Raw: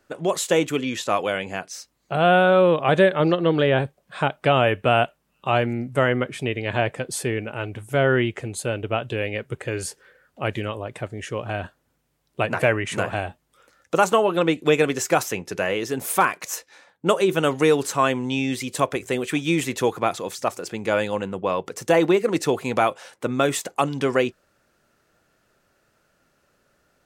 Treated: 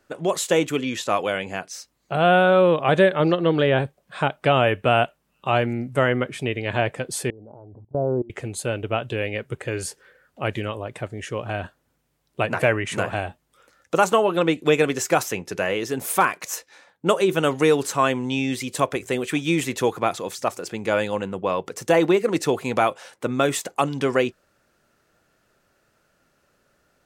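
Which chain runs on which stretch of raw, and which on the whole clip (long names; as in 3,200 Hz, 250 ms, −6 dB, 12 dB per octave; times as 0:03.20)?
0:07.30–0:08.30: Butterworth low-pass 950 Hz 48 dB per octave + mains-hum notches 60/120/180/240 Hz + output level in coarse steps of 22 dB
whole clip: no processing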